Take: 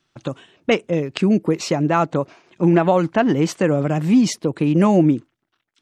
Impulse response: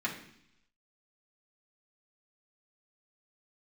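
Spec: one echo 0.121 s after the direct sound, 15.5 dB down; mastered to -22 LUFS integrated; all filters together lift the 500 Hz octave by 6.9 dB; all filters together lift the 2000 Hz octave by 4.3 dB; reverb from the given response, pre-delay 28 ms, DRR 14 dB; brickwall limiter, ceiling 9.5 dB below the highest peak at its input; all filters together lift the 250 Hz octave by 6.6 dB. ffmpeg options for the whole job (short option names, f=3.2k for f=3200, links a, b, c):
-filter_complex "[0:a]equalizer=f=250:t=o:g=6.5,equalizer=f=500:t=o:g=6.5,equalizer=f=2k:t=o:g=5,alimiter=limit=-6dB:level=0:latency=1,aecho=1:1:121:0.168,asplit=2[a][b];[1:a]atrim=start_sample=2205,adelay=28[c];[b][c]afir=irnorm=-1:irlink=0,volume=-20dB[d];[a][d]amix=inputs=2:normalize=0,volume=-6dB"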